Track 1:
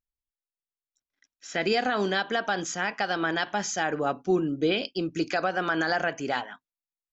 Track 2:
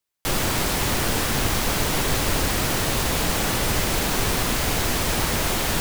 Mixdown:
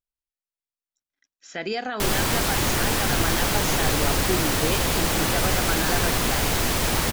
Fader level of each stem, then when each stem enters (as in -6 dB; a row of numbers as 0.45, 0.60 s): -3.5, 0.0 dB; 0.00, 1.75 s